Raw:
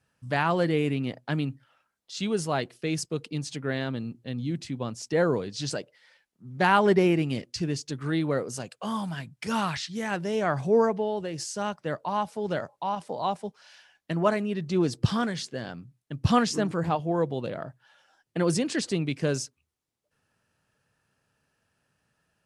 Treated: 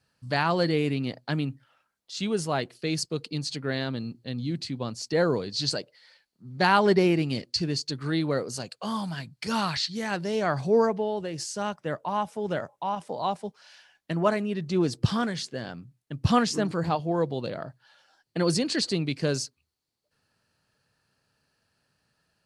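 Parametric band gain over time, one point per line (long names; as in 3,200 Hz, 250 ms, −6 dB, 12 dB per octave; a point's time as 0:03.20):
parametric band 4,400 Hz 0.26 octaves
+13.5 dB
from 0:01.32 +3 dB
from 0:02.75 +13.5 dB
from 0:10.87 +3 dB
from 0:11.76 −5.5 dB
from 0:13.07 +3 dB
from 0:16.65 +13 dB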